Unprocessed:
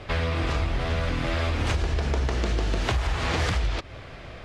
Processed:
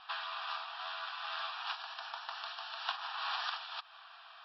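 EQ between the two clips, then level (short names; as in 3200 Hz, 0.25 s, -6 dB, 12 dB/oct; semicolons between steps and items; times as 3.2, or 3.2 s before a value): brick-wall FIR high-pass 630 Hz; brick-wall FIR low-pass 5700 Hz; fixed phaser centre 2100 Hz, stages 6; -4.5 dB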